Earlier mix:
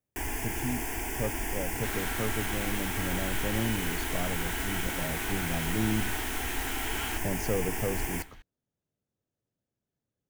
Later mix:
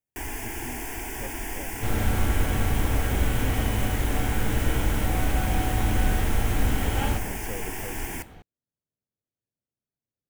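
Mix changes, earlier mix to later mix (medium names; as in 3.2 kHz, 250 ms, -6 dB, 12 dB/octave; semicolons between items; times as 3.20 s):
speech -8.5 dB; second sound: remove high-pass 1.3 kHz 24 dB/octave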